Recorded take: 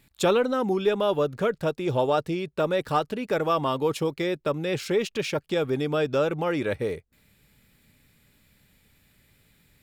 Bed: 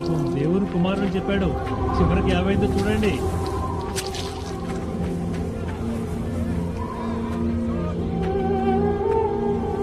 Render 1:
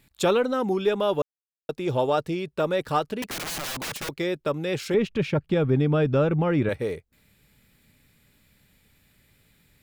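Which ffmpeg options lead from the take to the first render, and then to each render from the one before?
-filter_complex "[0:a]asettb=1/sr,asplit=3[s0][s1][s2];[s0]atrim=end=3.224[s3];[s1]atrim=start=3.22:end=4.09,asetpts=PTS-STARTPTS,afade=t=in:d=0.004:c=qsin,afade=t=out:st=0.866:d=0.004:c=qsin,aeval=exprs='(mod(22.4*val(0)+1,2)-1)/22.4':c=same[s4];[s2]atrim=start=4.086[s5];[s3][s4]acrossfade=d=0.004:c1=hsin:c2=qsin[s6];[s6][s5]acrossfade=d=0.004:c1=qsin:c2=hsin,asettb=1/sr,asplit=3[s7][s8][s9];[s7]atrim=end=4.944[s10];[s8]atrim=start=4.94:end=6.69,asetpts=PTS-STARTPTS,afade=t=in:d=0.004:c=qsin,afade=t=out:st=1.746:d=0.004:c=qsin,bass=f=250:g=12,treble=f=4000:g=-13[s11];[s9]atrim=start=6.686[s12];[s10][s11]acrossfade=d=0.004:c1=hsin:c2=qsin[s13];[s13][s12]acrossfade=d=0.004:c1=qsin:c2=hsin,asplit=3[s14][s15][s16];[s14]atrim=end=1.22,asetpts=PTS-STARTPTS,afade=t=out:st=1.216:d=0.004:c=hsin[s17];[s15]atrim=start=1.22:end=1.69,asetpts=PTS-STARTPTS,volume=0[s18];[s16]atrim=start=1.69,asetpts=PTS-STARTPTS,afade=t=in:d=0.004:c=hsin[s19];[s17][s18][s19]concat=n=3:v=0:a=1"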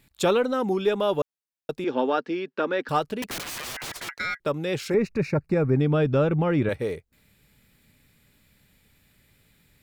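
-filter_complex "[0:a]asettb=1/sr,asplit=3[s0][s1][s2];[s0]atrim=end=1.844[s3];[s1]atrim=start=1.84:end=2.89,asetpts=PTS-STARTPTS,afade=t=in:d=0.004:c=qsin,afade=t=out:st=1.046:d=0.004:c=qsin,highpass=f=240:w=0.5412,highpass=f=240:w=1.3066,equalizer=f=250:t=q:w=4:g=9,equalizer=f=630:t=q:w=4:g=-5,equalizer=f=1600:t=q:w=4:g=8,equalizer=f=3800:t=q:w=4:g=-4,lowpass=f=5100:w=0.5412,lowpass=f=5100:w=1.3066[s4];[s2]atrim=start=2.886[s5];[s3][s4]acrossfade=d=0.004:c1=hsin:c2=qsin[s6];[s6][s5]acrossfade=d=0.004:c1=qsin:c2=hsin,asettb=1/sr,asplit=3[s7][s8][s9];[s7]atrim=end=3.414[s10];[s8]atrim=start=3.41:end=4.4,asetpts=PTS-STARTPTS,afade=t=in:d=0.004:c=qsin,afade=t=out:st=0.986:d=0.004:c=qsin,aeval=exprs='val(0)*sin(2*PI*1800*n/s)':c=same[s11];[s9]atrim=start=4.396[s12];[s10][s11]acrossfade=d=0.004:c1=hsin:c2=qsin[s13];[s13][s12]acrossfade=d=0.004:c1=qsin:c2=hsin,asettb=1/sr,asplit=3[s14][s15][s16];[s14]atrim=end=4.904[s17];[s15]atrim=start=4.9:end=5.81,asetpts=PTS-STARTPTS,afade=t=in:d=0.004:c=qsin,afade=t=out:st=0.906:d=0.004:c=qsin,asuperstop=centerf=3200:order=4:qfactor=2.1[s18];[s16]atrim=start=5.806[s19];[s17][s18]acrossfade=d=0.004:c1=hsin:c2=qsin[s20];[s20][s19]acrossfade=d=0.004:c1=qsin:c2=hsin"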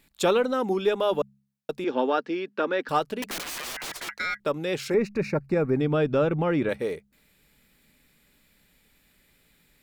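-af "equalizer=f=100:w=1.5:g=-12,bandreject=f=68.19:t=h:w=4,bandreject=f=136.38:t=h:w=4,bandreject=f=204.57:t=h:w=4"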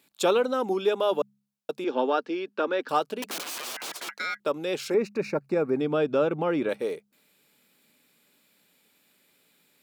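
-af "highpass=250,equalizer=f=1900:t=o:w=0.41:g=-6"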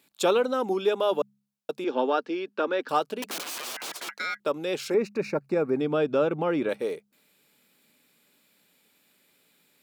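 -af anull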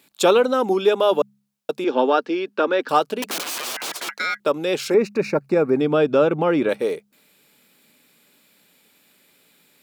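-af "volume=2.24"

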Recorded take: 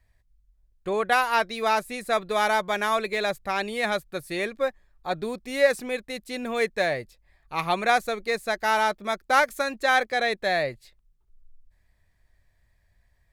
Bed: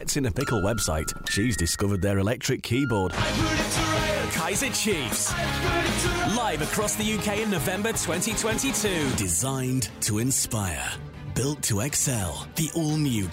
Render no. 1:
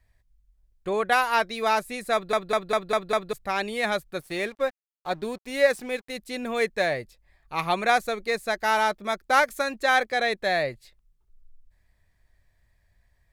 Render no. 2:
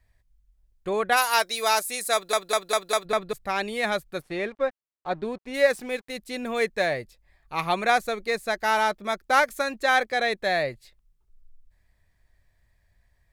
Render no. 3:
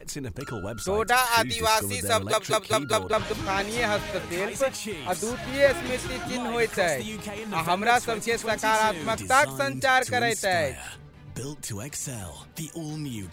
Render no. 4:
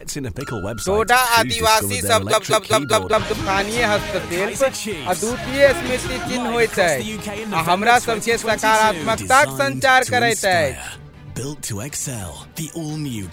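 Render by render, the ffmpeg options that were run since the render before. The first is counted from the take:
-filter_complex "[0:a]asettb=1/sr,asplit=3[s0][s1][s2];[s0]atrim=end=4.204[s3];[s1]atrim=start=4.2:end=6.15,asetpts=PTS-STARTPTS,afade=t=in:d=0.004:c=qsin,afade=t=out:st=1.946:d=0.004:c=qsin,aeval=exprs='sgn(val(0))*max(abs(val(0))-0.00398,0)':c=same[s4];[s2]atrim=start=6.146[s5];[s3][s4]acrossfade=d=0.004:c1=hsin:c2=qsin[s6];[s6][s5]acrossfade=d=0.004:c1=qsin:c2=hsin,asplit=7[s7][s8][s9][s10][s11][s12][s13];[s7]atrim=end=2.332[s14];[s8]atrim=start=2.128:end=2.332[s15];[s9]atrim=start=2.128:end=2.332[s16];[s10]atrim=start=2.128:end=2.332[s17];[s11]atrim=start=2.128:end=2.332[s18];[s12]atrim=start=2.128:end=2.332[s19];[s13]atrim=start=3.328[s20];[s14][s15]acrossfade=d=0.004:c1=hsin:c2=hsin[s21];[s21][s16]acrossfade=d=0.004:c1=hsin:c2=hsin[s22];[s22][s17]acrossfade=d=0.004:c1=hsin:c2=hsin[s23];[s23][s18]acrossfade=d=0.004:c1=hsin:c2=hsin[s24];[s24][s19]acrossfade=d=0.004:c1=hsin:c2=hsin[s25];[s25][s20]acrossfade=d=0.004:c1=hsin:c2=hsin"
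-filter_complex "[0:a]asplit=3[s0][s1][s2];[s0]afade=t=out:st=1.16:d=0.02[s3];[s1]bass=f=250:g=-15,treble=f=4000:g=14,afade=t=in:st=1.16:d=0.02,afade=t=out:st=3.04:d=0.02[s4];[s2]afade=t=in:st=3.04:d=0.02[s5];[s3][s4][s5]amix=inputs=3:normalize=0,asplit=3[s6][s7][s8];[s6]afade=t=out:st=4.21:d=0.02[s9];[s7]aemphasis=mode=reproduction:type=75fm,afade=t=in:st=4.21:d=0.02,afade=t=out:st=5.53:d=0.02[s10];[s8]afade=t=in:st=5.53:d=0.02[s11];[s9][s10][s11]amix=inputs=3:normalize=0"
-filter_complex "[1:a]volume=0.355[s0];[0:a][s0]amix=inputs=2:normalize=0"
-af "volume=2.37,alimiter=limit=0.891:level=0:latency=1"

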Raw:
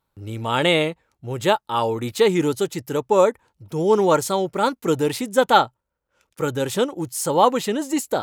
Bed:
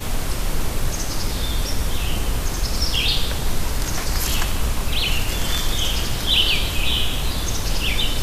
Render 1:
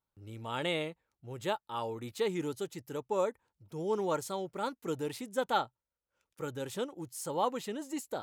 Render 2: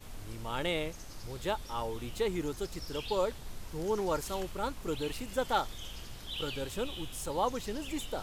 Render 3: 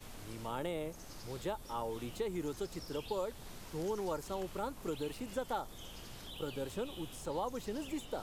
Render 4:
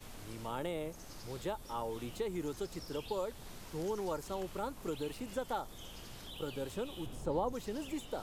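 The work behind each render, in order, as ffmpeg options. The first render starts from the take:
-af "volume=0.178"
-filter_complex "[1:a]volume=0.075[s0];[0:a][s0]amix=inputs=2:normalize=0"
-filter_complex "[0:a]acrossover=split=120|1200|7900[s0][s1][s2][s3];[s0]acompressor=threshold=0.00282:ratio=4[s4];[s1]acompressor=threshold=0.0178:ratio=4[s5];[s2]acompressor=threshold=0.00251:ratio=4[s6];[s3]acompressor=threshold=0.00126:ratio=4[s7];[s4][s5][s6][s7]amix=inputs=4:normalize=0"
-filter_complex "[0:a]asettb=1/sr,asplit=3[s0][s1][s2];[s0]atrim=end=7.064[s3];[s1]atrim=start=7.06:end=7.53,asetpts=PTS-STARTPTS,afade=t=in:d=0.004:c=qsin,afade=t=out:st=0.466:d=0.004:c=qsin,tiltshelf=f=1100:g=6.5[s4];[s2]atrim=start=7.526[s5];[s3][s4]acrossfade=d=0.004:c1=hsin:c2=qsin[s6];[s6][s5]acrossfade=d=0.004:c1=qsin:c2=hsin"

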